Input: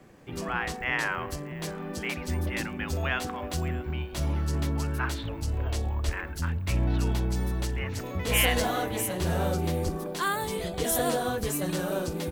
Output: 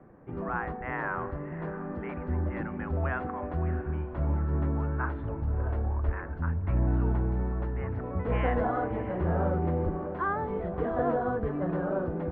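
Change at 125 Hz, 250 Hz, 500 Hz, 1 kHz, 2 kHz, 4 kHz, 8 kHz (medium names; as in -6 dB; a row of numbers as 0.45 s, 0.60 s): 0.0 dB, 0.0 dB, 0.0 dB, 0.0 dB, -6.5 dB, under -25 dB, under -40 dB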